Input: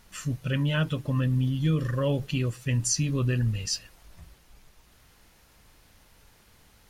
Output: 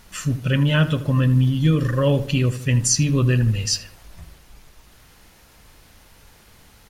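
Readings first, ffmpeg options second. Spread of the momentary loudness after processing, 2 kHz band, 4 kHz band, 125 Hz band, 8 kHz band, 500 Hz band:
5 LU, +7.5 dB, +7.5 dB, +8.0 dB, +7.5 dB, +8.0 dB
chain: -filter_complex "[0:a]asplit=2[s0][s1];[s1]adelay=79,lowpass=f=2300:p=1,volume=0.224,asplit=2[s2][s3];[s3]adelay=79,lowpass=f=2300:p=1,volume=0.49,asplit=2[s4][s5];[s5]adelay=79,lowpass=f=2300:p=1,volume=0.49,asplit=2[s6][s7];[s7]adelay=79,lowpass=f=2300:p=1,volume=0.49,asplit=2[s8][s9];[s9]adelay=79,lowpass=f=2300:p=1,volume=0.49[s10];[s0][s2][s4][s6][s8][s10]amix=inputs=6:normalize=0,volume=2.37"

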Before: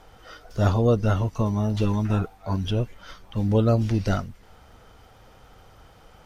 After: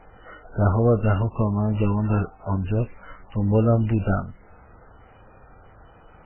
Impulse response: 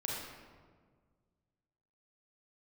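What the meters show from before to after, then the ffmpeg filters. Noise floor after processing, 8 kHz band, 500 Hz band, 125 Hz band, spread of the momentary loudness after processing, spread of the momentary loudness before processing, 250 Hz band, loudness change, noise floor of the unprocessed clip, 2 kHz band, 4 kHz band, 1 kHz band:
-51 dBFS, no reading, +1.5 dB, +1.5 dB, 9 LU, 9 LU, +1.5 dB, +1.5 dB, -52 dBFS, +1.0 dB, under -10 dB, +1.5 dB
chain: -filter_complex "[0:a]asplit=2[s0][s1];[s1]asoftclip=type=tanh:threshold=0.158,volume=0.299[s2];[s0][s2]amix=inputs=2:normalize=0" -ar 8000 -c:a libmp3lame -b:a 8k

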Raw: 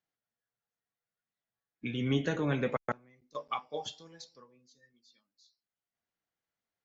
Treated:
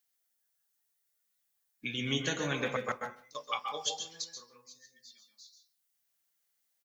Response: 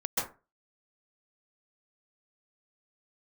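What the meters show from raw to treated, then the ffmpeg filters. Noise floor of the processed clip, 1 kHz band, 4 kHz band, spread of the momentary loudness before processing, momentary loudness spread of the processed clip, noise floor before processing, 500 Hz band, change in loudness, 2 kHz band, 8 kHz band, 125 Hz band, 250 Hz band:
-79 dBFS, +1.0 dB, +8.0 dB, 19 LU, 23 LU, under -85 dBFS, -2.5 dB, -0.5 dB, +3.5 dB, no reading, -5.5 dB, -5.0 dB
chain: -filter_complex "[0:a]asplit=2[s0][s1];[s1]adelay=150,highpass=300,lowpass=3400,asoftclip=type=hard:threshold=0.0501,volume=0.112[s2];[s0][s2]amix=inputs=2:normalize=0,asplit=2[s3][s4];[1:a]atrim=start_sample=2205[s5];[s4][s5]afir=irnorm=-1:irlink=0,volume=0.376[s6];[s3][s6]amix=inputs=2:normalize=0,crystalizer=i=9.5:c=0,volume=0.355"

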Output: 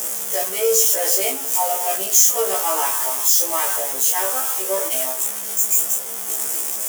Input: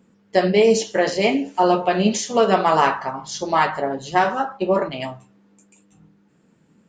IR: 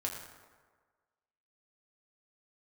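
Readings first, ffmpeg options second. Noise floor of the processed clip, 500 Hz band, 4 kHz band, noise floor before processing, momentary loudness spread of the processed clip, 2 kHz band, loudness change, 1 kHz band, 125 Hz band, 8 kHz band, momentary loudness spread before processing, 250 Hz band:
-28 dBFS, -5.5 dB, +2.0 dB, -59 dBFS, 7 LU, -5.0 dB, +2.5 dB, -6.0 dB, under -25 dB, +17.5 dB, 11 LU, -17.5 dB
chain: -filter_complex "[0:a]aeval=exprs='val(0)+0.5*0.133*sgn(val(0))':c=same,highpass=f=370:w=0.5412,highpass=f=370:w=1.3066,equalizer=f=3300:t=o:w=0.24:g=6,asplit=2[s0][s1];[1:a]atrim=start_sample=2205,atrim=end_sample=3528[s2];[s1][s2]afir=irnorm=-1:irlink=0,volume=0.106[s3];[s0][s3]amix=inputs=2:normalize=0,aexciter=amount=12.7:drive=3.9:freq=6000,acrusher=bits=9:mode=log:mix=0:aa=0.000001,afftfilt=real='re*1.73*eq(mod(b,3),0)':imag='im*1.73*eq(mod(b,3),0)':win_size=2048:overlap=0.75,volume=0.398"

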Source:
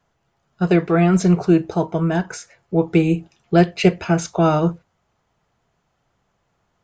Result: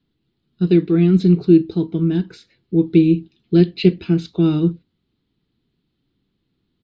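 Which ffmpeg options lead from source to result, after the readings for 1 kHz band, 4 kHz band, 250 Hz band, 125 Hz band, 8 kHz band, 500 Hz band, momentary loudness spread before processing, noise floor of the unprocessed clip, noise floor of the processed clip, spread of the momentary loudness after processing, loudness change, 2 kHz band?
under -15 dB, -0.5 dB, +3.0 dB, +1.5 dB, under -20 dB, -1.0 dB, 9 LU, -70 dBFS, -73 dBFS, 8 LU, +1.5 dB, -9.0 dB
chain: -af "firequalizer=gain_entry='entry(110,0);entry(290,10);entry(610,-18);entry(4000,7);entry(6100,-19)':delay=0.05:min_phase=1,volume=0.794"

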